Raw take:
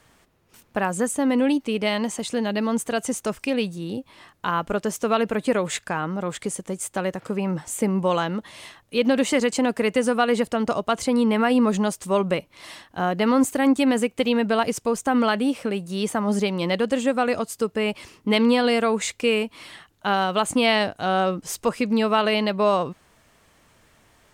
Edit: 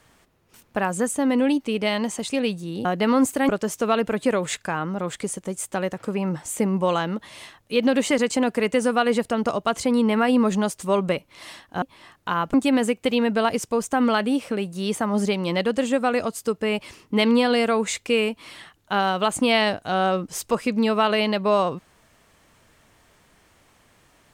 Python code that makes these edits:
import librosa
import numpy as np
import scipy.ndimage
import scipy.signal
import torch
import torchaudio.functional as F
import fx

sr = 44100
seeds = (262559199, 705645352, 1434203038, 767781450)

y = fx.edit(x, sr, fx.cut(start_s=2.32, length_s=1.14),
    fx.swap(start_s=3.99, length_s=0.72, other_s=13.04, other_length_s=0.64), tone=tone)